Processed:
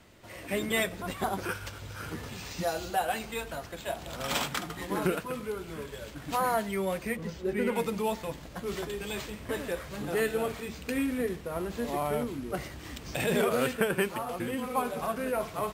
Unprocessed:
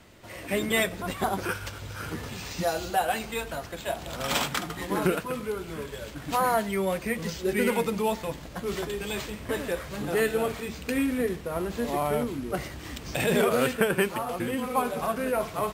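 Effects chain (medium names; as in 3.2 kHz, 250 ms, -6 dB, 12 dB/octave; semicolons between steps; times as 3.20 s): 7.15–7.75 s: treble shelf 2.1 kHz -> 3.3 kHz -11.5 dB; trim -3.5 dB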